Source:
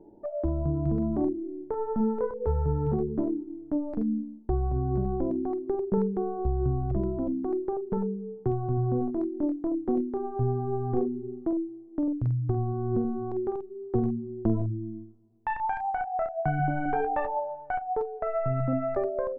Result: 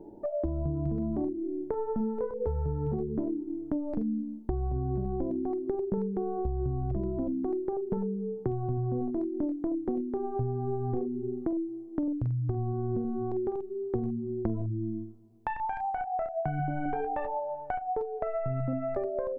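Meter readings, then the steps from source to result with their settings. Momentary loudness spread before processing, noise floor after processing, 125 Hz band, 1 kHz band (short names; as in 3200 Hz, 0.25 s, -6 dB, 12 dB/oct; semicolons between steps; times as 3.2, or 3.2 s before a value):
5 LU, -42 dBFS, -3.0 dB, -3.5 dB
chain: compressor 5:1, threshold -33 dBFS, peak gain reduction 12 dB; dynamic EQ 1300 Hz, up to -5 dB, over -53 dBFS, Q 1.3; gain +5 dB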